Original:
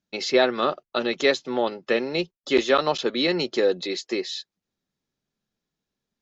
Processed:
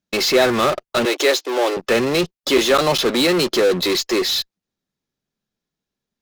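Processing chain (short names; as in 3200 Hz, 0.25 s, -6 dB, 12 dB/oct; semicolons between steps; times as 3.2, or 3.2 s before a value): in parallel at -7 dB: fuzz box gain 39 dB, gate -48 dBFS; 1.05–1.77 on the sum: Chebyshev high-pass 300 Hz, order 5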